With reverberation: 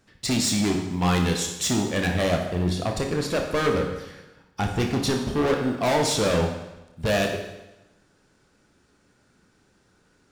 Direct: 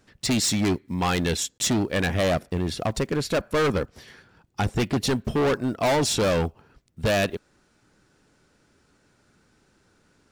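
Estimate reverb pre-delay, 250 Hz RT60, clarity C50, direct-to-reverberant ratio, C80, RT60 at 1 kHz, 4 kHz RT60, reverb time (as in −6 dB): 22 ms, 1.0 s, 5.0 dB, 2.0 dB, 7.5 dB, 1.0 s, 0.95 s, 1.0 s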